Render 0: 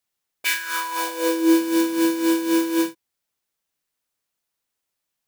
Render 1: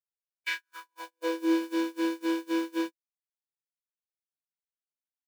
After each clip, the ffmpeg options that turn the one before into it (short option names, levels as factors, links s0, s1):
-filter_complex "[0:a]agate=range=0.00447:threshold=0.0794:ratio=16:detection=peak,acrossover=split=4900[s0][s1];[s1]acompressor=threshold=0.00501:ratio=4:attack=1:release=60[s2];[s0][s2]amix=inputs=2:normalize=0,highpass=290,volume=0.447"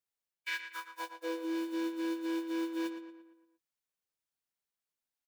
-filter_complex "[0:a]areverse,acompressor=threshold=0.0126:ratio=4,areverse,asplit=2[s0][s1];[s1]adelay=115,lowpass=f=3500:p=1,volume=0.376,asplit=2[s2][s3];[s3]adelay=115,lowpass=f=3500:p=1,volume=0.5,asplit=2[s4][s5];[s5]adelay=115,lowpass=f=3500:p=1,volume=0.5,asplit=2[s6][s7];[s7]adelay=115,lowpass=f=3500:p=1,volume=0.5,asplit=2[s8][s9];[s9]adelay=115,lowpass=f=3500:p=1,volume=0.5,asplit=2[s10][s11];[s11]adelay=115,lowpass=f=3500:p=1,volume=0.5[s12];[s0][s2][s4][s6][s8][s10][s12]amix=inputs=7:normalize=0,volume=1.41"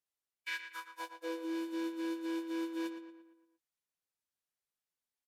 -af "aresample=32000,aresample=44100,volume=0.75"